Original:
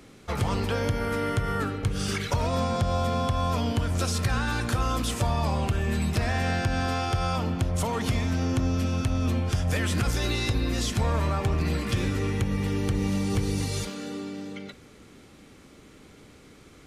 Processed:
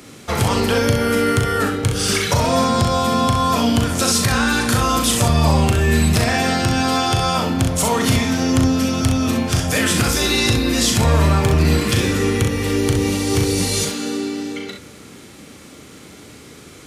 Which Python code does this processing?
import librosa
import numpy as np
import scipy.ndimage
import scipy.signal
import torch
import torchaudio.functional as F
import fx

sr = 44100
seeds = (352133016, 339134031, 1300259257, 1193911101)

p1 = scipy.signal.sosfilt(scipy.signal.butter(2, 81.0, 'highpass', fs=sr, output='sos'), x)
p2 = fx.high_shelf(p1, sr, hz=4700.0, db=7.5)
p3 = p2 + fx.room_early_taps(p2, sr, ms=(38, 64), db=(-6.0, -6.5), dry=0)
y = p3 * librosa.db_to_amplitude(8.5)